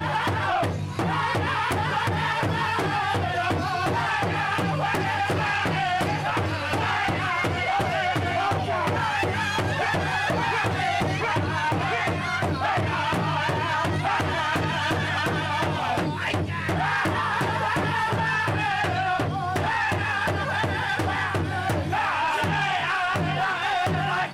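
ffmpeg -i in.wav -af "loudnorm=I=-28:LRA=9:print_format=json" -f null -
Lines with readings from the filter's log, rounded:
"input_i" : "-24.5",
"input_tp" : "-15.7",
"input_lra" : "0.5",
"input_thresh" : "-34.5",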